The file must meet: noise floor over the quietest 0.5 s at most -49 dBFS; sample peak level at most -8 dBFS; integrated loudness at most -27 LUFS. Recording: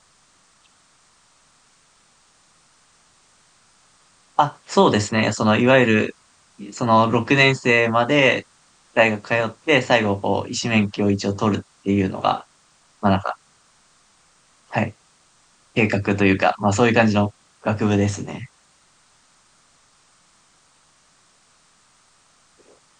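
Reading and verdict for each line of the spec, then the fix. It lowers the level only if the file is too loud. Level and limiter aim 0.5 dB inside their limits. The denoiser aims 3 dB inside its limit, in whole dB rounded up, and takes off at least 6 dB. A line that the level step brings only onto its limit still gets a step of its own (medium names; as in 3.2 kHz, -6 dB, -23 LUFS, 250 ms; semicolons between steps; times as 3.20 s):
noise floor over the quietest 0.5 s -58 dBFS: pass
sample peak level -1.5 dBFS: fail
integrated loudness -19.0 LUFS: fail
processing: trim -8.5 dB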